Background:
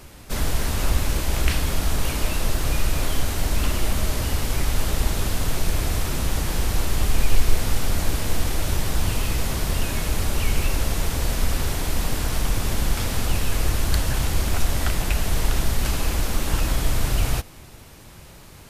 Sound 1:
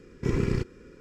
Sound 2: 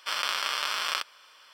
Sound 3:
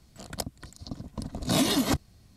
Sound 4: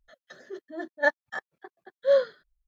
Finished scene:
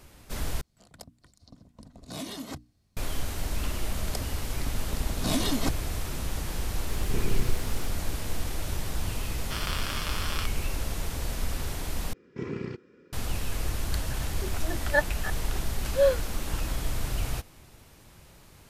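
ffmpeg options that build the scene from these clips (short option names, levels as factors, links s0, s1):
-filter_complex "[3:a]asplit=2[s0][s1];[1:a]asplit=2[s2][s3];[0:a]volume=0.376[s4];[s0]bandreject=f=60:t=h:w=6,bandreject=f=120:t=h:w=6,bandreject=f=180:t=h:w=6,bandreject=f=240:t=h:w=6,bandreject=f=300:t=h:w=6[s5];[s2]aeval=exprs='val(0)+0.5*0.0266*sgn(val(0))':c=same[s6];[s3]highpass=150,lowpass=4300[s7];[s4]asplit=3[s8][s9][s10];[s8]atrim=end=0.614[s11];[s5]atrim=end=2.36,asetpts=PTS-STARTPTS,volume=0.224[s12];[s9]atrim=start=2.966:end=12.134[s13];[s7]atrim=end=1,asetpts=PTS-STARTPTS,volume=0.501[s14];[s10]atrim=start=13.126[s15];[s1]atrim=end=2.36,asetpts=PTS-STARTPTS,volume=0.631,afade=t=in:d=0.004:c=hsin,afade=t=out:st=2.356:d=0.004:c=hsin,adelay=3750[s16];[s6]atrim=end=1,asetpts=PTS-STARTPTS,volume=0.376,afade=t=in:d=0.004:c=hsin,afade=t=out:st=0.996:d=0.004:c=hsin,adelay=6880[s17];[2:a]atrim=end=1.53,asetpts=PTS-STARTPTS,volume=0.501,afade=t=in:d=0.004:c=hsin,afade=t=out:st=1.526:d=0.004:c=hsin,adelay=9440[s18];[4:a]atrim=end=2.67,asetpts=PTS-STARTPTS,volume=0.891,afade=t=in:d=0.004:c=hsin,afade=t=out:st=2.666:d=0.004:c=hsin,adelay=13910[s19];[s11][s12]acrossfade=d=0.004:c1=hsin:c2=hsin[s20];[s20][s13]acrossfade=d=0.004:c1=hsin:c2=hsin[s21];[s21][s14]acrossfade=d=0.004:c1=hsin:c2=hsin[s22];[s22][s15]acrossfade=d=0.004:c1=hsin:c2=hsin[s23];[s23][s16][s17][s18][s19]amix=inputs=5:normalize=0"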